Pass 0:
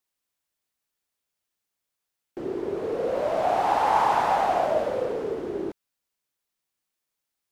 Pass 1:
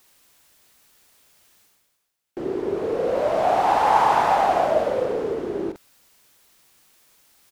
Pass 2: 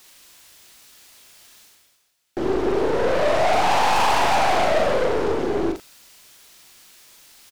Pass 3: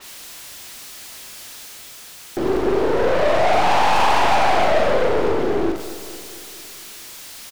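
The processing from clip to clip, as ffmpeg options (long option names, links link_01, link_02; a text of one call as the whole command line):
ffmpeg -i in.wav -filter_complex "[0:a]asplit=2[link_01][link_02];[link_02]adelay=42,volume=-12dB[link_03];[link_01][link_03]amix=inputs=2:normalize=0,areverse,acompressor=mode=upward:threshold=-43dB:ratio=2.5,areverse,volume=3.5dB" out.wav
ffmpeg -i in.wav -filter_complex "[0:a]equalizer=frequency=4300:width=0.48:gain=5.5,aeval=exprs='(tanh(20*val(0)+0.6)-tanh(0.6))/20':channel_layout=same,asplit=2[link_01][link_02];[link_02]adelay=39,volume=-6.5dB[link_03];[link_01][link_03]amix=inputs=2:normalize=0,volume=8dB" out.wav
ffmpeg -i in.wav -af "aeval=exprs='val(0)+0.5*0.0158*sgn(val(0))':channel_layout=same,aecho=1:1:227|454|681|908|1135|1362:0.2|0.118|0.0695|0.041|0.0242|0.0143,adynamicequalizer=threshold=0.0112:dfrequency=4600:dqfactor=0.7:tfrequency=4600:tqfactor=0.7:attack=5:release=100:ratio=0.375:range=2.5:mode=cutabove:tftype=highshelf,volume=1.5dB" out.wav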